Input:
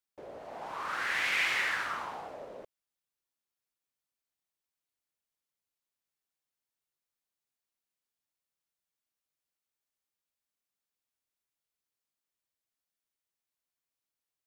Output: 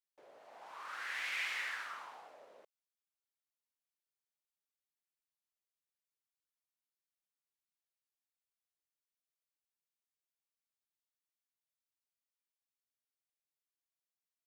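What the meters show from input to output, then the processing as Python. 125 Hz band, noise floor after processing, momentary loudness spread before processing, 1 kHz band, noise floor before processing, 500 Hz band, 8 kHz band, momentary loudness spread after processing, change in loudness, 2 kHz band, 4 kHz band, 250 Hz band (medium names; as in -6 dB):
under -20 dB, under -85 dBFS, 20 LU, -10.5 dB, under -85 dBFS, -14.0 dB, -8.0 dB, 20 LU, -8.5 dB, -9.0 dB, -8.5 dB, -19.0 dB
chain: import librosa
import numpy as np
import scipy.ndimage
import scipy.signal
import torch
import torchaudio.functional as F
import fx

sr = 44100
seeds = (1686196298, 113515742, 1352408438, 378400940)

y = fx.highpass(x, sr, hz=1000.0, slope=6)
y = y * 10.0 ** (-8.0 / 20.0)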